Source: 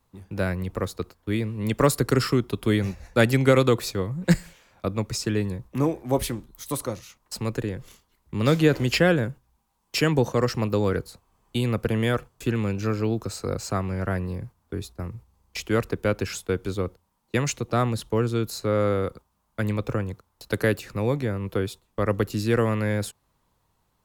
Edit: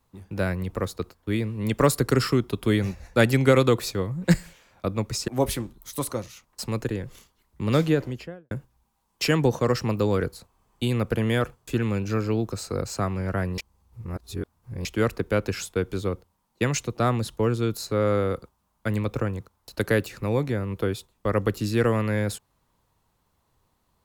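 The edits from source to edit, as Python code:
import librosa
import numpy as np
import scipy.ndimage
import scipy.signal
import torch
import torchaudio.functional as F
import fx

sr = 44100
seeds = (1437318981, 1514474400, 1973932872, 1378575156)

y = fx.studio_fade_out(x, sr, start_s=8.34, length_s=0.9)
y = fx.edit(y, sr, fx.cut(start_s=5.28, length_s=0.73),
    fx.reverse_span(start_s=14.31, length_s=1.27), tone=tone)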